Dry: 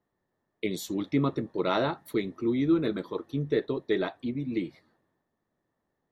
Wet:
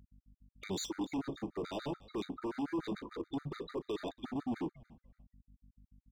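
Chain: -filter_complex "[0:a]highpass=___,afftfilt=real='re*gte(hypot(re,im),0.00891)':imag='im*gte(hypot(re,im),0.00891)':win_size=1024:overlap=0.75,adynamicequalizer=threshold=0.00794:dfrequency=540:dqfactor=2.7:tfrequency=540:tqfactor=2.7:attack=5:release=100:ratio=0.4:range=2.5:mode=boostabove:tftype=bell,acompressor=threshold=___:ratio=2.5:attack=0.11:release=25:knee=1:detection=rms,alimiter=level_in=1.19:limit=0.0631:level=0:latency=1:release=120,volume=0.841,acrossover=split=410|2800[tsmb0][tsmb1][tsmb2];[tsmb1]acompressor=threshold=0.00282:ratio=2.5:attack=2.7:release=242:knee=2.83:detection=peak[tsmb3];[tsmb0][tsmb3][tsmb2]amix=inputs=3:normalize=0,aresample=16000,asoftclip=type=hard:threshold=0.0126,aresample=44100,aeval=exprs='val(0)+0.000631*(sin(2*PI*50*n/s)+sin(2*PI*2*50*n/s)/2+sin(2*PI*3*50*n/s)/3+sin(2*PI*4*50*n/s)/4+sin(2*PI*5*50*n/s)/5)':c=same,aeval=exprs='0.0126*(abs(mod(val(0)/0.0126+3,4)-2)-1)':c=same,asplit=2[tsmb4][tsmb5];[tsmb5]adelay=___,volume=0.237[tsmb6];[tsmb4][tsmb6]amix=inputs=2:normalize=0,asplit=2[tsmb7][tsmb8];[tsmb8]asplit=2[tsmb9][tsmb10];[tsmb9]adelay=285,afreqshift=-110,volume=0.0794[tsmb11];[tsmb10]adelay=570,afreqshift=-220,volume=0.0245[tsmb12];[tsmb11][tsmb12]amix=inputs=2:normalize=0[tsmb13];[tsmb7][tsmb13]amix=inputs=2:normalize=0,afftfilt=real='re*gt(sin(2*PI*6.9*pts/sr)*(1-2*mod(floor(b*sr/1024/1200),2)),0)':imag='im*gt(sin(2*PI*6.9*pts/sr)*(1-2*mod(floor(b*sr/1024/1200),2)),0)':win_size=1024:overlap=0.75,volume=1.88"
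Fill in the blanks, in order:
170, 0.0398, 36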